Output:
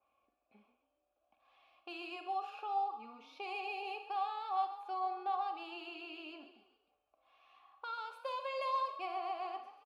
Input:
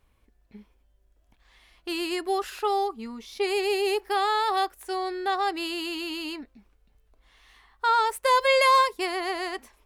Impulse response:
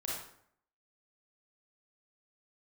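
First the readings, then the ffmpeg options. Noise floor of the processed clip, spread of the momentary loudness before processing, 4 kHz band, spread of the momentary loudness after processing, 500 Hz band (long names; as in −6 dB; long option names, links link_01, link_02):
−83 dBFS, 14 LU, −19.0 dB, 12 LU, −19.5 dB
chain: -filter_complex "[0:a]highpass=43,equalizer=frequency=8200:width_type=o:width=0.55:gain=-6.5,aecho=1:1:3.6:0.39,acrossover=split=190|3000[link_01][link_02][link_03];[link_02]acompressor=threshold=-38dB:ratio=2.5[link_04];[link_01][link_04][link_03]amix=inputs=3:normalize=0,asplit=3[link_05][link_06][link_07];[link_05]bandpass=frequency=730:width_type=q:width=8,volume=0dB[link_08];[link_06]bandpass=frequency=1090:width_type=q:width=8,volume=-6dB[link_09];[link_07]bandpass=frequency=2440:width_type=q:width=8,volume=-9dB[link_10];[link_08][link_09][link_10]amix=inputs=3:normalize=0,asplit=5[link_11][link_12][link_13][link_14][link_15];[link_12]adelay=138,afreqshift=33,volume=-13dB[link_16];[link_13]adelay=276,afreqshift=66,volume=-21.2dB[link_17];[link_14]adelay=414,afreqshift=99,volume=-29.4dB[link_18];[link_15]adelay=552,afreqshift=132,volume=-37.5dB[link_19];[link_11][link_16][link_17][link_18][link_19]amix=inputs=5:normalize=0,asplit=2[link_20][link_21];[1:a]atrim=start_sample=2205,atrim=end_sample=4410[link_22];[link_21][link_22]afir=irnorm=-1:irlink=0,volume=-5dB[link_23];[link_20][link_23]amix=inputs=2:normalize=0,adynamicequalizer=threshold=0.00141:dfrequency=2800:dqfactor=0.7:tfrequency=2800:tqfactor=0.7:attack=5:release=100:ratio=0.375:range=2.5:mode=cutabove:tftype=highshelf,volume=1.5dB"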